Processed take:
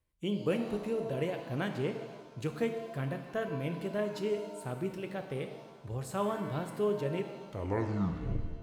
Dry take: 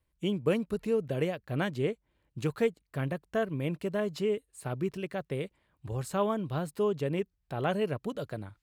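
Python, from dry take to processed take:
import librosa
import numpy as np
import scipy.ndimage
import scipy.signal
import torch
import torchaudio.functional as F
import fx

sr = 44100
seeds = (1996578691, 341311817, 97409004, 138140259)

y = fx.tape_stop_end(x, sr, length_s=1.33)
y = fx.rev_shimmer(y, sr, seeds[0], rt60_s=1.3, semitones=7, shimmer_db=-8, drr_db=6.0)
y = y * librosa.db_to_amplitude(-4.0)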